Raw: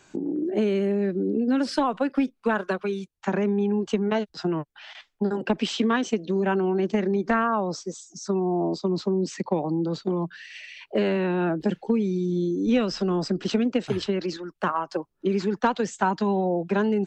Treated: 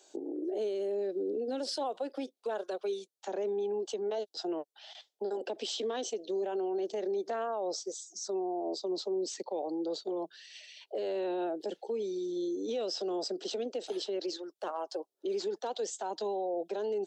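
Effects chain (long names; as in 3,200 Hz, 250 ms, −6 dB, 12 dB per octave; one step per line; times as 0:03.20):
high-pass filter 400 Hz 24 dB per octave
flat-topped bell 1,600 Hz −14 dB
brickwall limiter −26 dBFS, peak gain reduction 10.5 dB
level −1 dB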